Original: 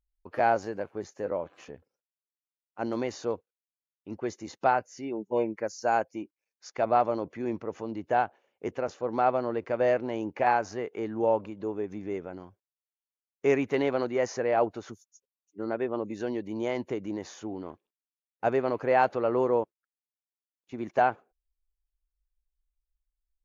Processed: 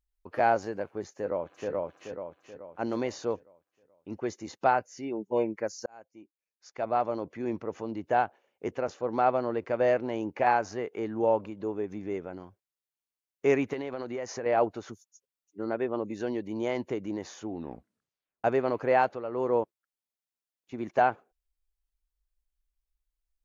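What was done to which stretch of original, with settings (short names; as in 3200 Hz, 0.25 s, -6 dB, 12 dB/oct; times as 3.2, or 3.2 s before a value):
1.11–1.71 echo throw 0.43 s, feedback 45%, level -0.5 dB
5.86–7.58 fade in
13.73–14.46 compressor, threshold -31 dBFS
17.5 tape stop 0.94 s
18.95–19.57 dip -9 dB, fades 0.27 s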